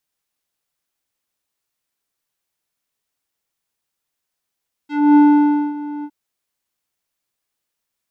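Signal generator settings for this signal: synth note square D4 12 dB/octave, low-pass 800 Hz, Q 1.1, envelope 2.5 oct, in 0.12 s, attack 265 ms, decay 0.58 s, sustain -18 dB, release 0.06 s, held 1.15 s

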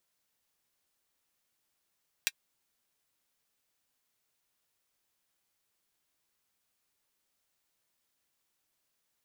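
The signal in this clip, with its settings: closed hi-hat, high-pass 2.1 kHz, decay 0.05 s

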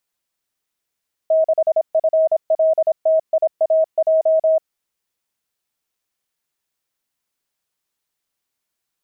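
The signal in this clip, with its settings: Morse "6FLTIAJ" 26 wpm 638 Hz -11.5 dBFS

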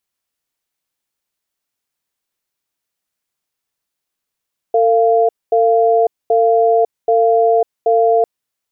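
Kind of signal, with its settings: cadence 452 Hz, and 691 Hz, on 0.55 s, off 0.23 s, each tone -12 dBFS 3.50 s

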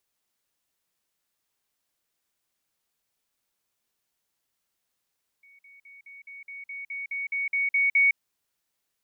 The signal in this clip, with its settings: level ladder 2.23 kHz -52.5 dBFS, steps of 3 dB, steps 13, 0.16 s 0.05 s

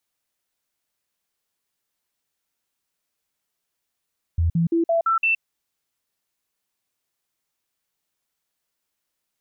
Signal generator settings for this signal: stepped sine 83.5 Hz up, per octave 1, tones 6, 0.12 s, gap 0.05 s -16.5 dBFS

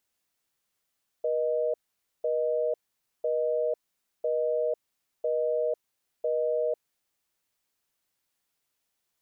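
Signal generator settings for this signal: call progress tone busy tone, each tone -27 dBFS 5.61 s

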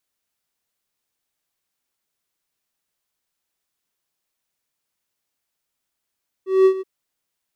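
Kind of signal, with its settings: ADSR triangle 380 Hz, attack 195 ms, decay 80 ms, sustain -15.5 dB, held 0.35 s, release 25 ms -6.5 dBFS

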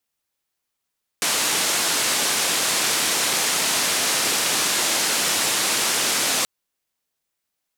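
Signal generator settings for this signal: noise band 190–9300 Hz, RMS -21.5 dBFS 5.23 s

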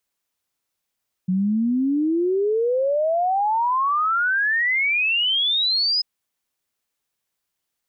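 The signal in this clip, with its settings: log sweep 180 Hz -> 5.1 kHz 4.74 s -17.5 dBFS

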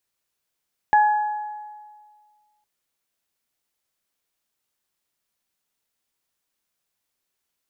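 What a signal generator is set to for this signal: additive tone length 1.71 s, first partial 843 Hz, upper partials -8.5 dB, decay 1.80 s, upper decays 1.15 s, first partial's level -11.5 dB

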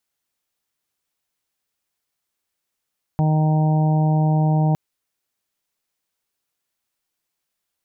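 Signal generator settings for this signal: steady additive tone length 1.56 s, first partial 155 Hz, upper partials -13/-19.5/-14.5/-12/-18.5 dB, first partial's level -15 dB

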